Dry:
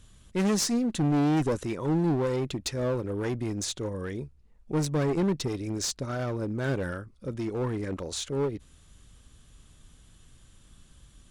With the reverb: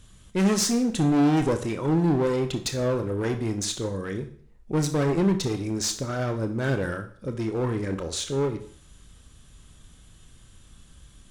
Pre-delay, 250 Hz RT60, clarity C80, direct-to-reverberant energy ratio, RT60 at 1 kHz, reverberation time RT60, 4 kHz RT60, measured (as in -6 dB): 26 ms, 0.55 s, 15.5 dB, 6.5 dB, 0.55 s, 0.50 s, 0.50 s